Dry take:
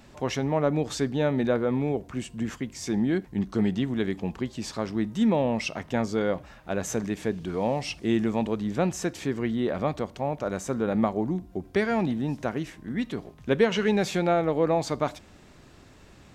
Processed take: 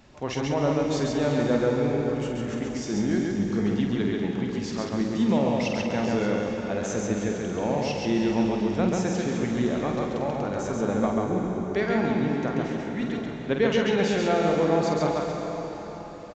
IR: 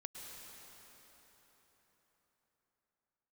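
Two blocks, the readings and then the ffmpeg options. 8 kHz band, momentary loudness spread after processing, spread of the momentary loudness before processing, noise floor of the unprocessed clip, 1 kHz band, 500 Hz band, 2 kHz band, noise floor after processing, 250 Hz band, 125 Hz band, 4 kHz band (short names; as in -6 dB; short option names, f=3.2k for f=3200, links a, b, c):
+0.5 dB, 7 LU, 8 LU, -52 dBFS, +1.5 dB, +2.0 dB, +1.5 dB, -36 dBFS, +2.0 dB, +1.5 dB, +1.5 dB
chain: -filter_complex "[0:a]asplit=2[a][b];[b]adelay=49,volume=-7dB[c];[a][c]amix=inputs=2:normalize=0,asplit=2[d][e];[1:a]atrim=start_sample=2205,adelay=137[f];[e][f]afir=irnorm=-1:irlink=0,volume=3.5dB[g];[d][g]amix=inputs=2:normalize=0,aresample=16000,aresample=44100,volume=-2.5dB"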